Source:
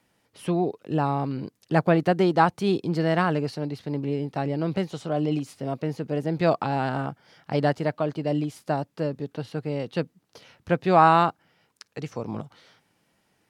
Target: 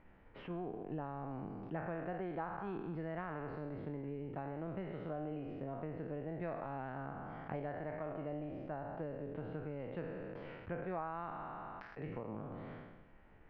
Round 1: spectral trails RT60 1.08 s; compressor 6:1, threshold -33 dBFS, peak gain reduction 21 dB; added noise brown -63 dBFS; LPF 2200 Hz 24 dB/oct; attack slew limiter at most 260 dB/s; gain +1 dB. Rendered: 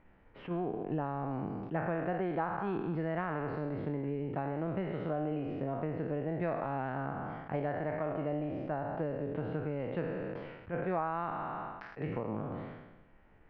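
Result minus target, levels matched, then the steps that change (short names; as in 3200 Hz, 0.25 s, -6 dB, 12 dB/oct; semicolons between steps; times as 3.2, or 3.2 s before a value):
compressor: peak gain reduction -7.5 dB
change: compressor 6:1, threshold -42 dBFS, peak gain reduction 28.5 dB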